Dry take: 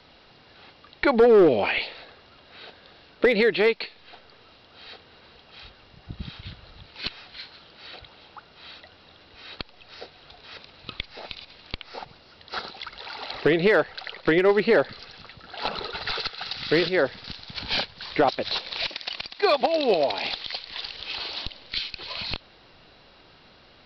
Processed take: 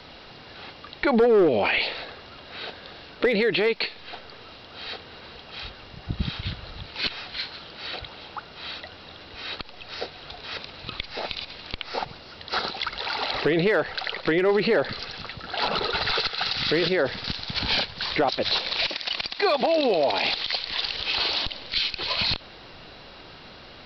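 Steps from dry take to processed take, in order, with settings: limiter -22.5 dBFS, peak gain reduction 11 dB; gain +8.5 dB

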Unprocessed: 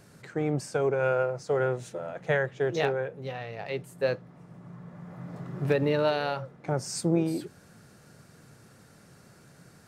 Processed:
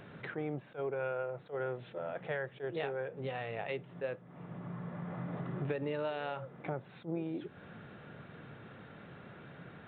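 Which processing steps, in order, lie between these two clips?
low shelf 120 Hz -7.5 dB; compressor 4:1, threshold -42 dBFS, peak gain reduction 17.5 dB; downsampling 8000 Hz; attack slew limiter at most 300 dB/s; gain +5.5 dB

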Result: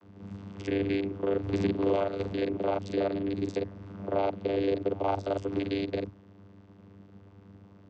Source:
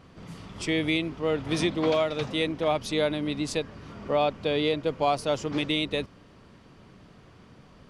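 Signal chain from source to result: local time reversal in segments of 37 ms; pre-echo 0.124 s -23 dB; vocoder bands 16, saw 98.6 Hz; gain -1 dB

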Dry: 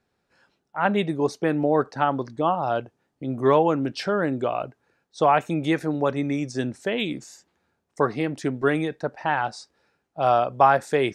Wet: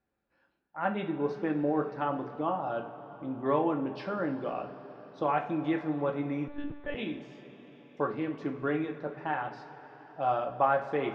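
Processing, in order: air absorption 280 m; two-slope reverb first 0.34 s, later 5 s, from -18 dB, DRR 2.5 dB; 6.48–6.95 monotone LPC vocoder at 8 kHz 290 Hz; gain -9 dB

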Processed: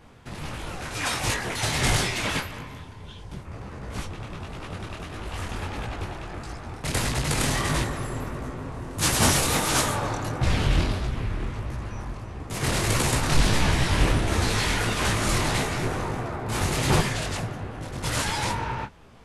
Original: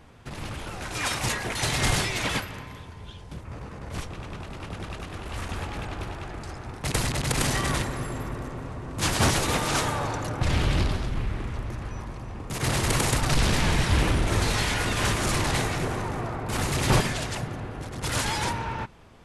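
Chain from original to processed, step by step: 8.74–9.95 high shelf 7700 Hz +10 dB; detuned doubles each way 53 cents; gain +4.5 dB

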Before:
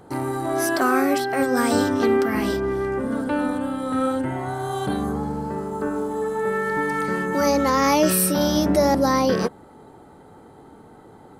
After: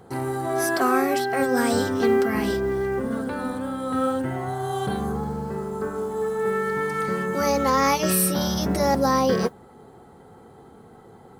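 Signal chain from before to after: notch comb 300 Hz; modulation noise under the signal 34 dB

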